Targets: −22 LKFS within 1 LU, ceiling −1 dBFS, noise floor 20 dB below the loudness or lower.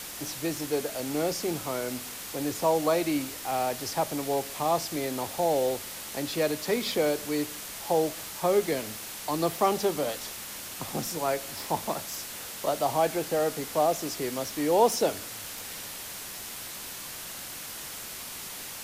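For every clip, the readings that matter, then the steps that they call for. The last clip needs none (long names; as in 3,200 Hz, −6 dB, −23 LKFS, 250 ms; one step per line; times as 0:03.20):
background noise floor −40 dBFS; target noise floor −50 dBFS; integrated loudness −29.5 LKFS; sample peak −11.0 dBFS; target loudness −22.0 LKFS
→ broadband denoise 10 dB, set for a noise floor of −40 dBFS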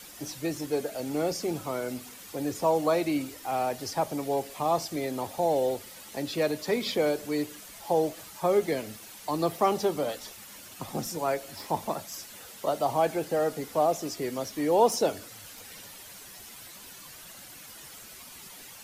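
background noise floor −47 dBFS; target noise floor −50 dBFS
→ broadband denoise 6 dB, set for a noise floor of −47 dBFS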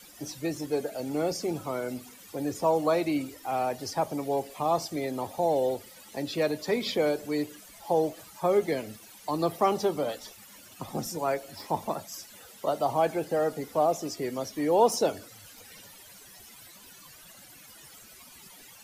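background noise floor −51 dBFS; integrated loudness −29.0 LKFS; sample peak −11.0 dBFS; target loudness −22.0 LKFS
→ level +7 dB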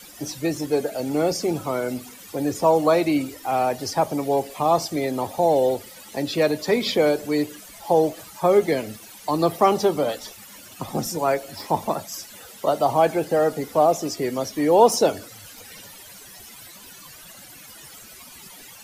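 integrated loudness −22.0 LKFS; sample peak −4.0 dBFS; background noise floor −44 dBFS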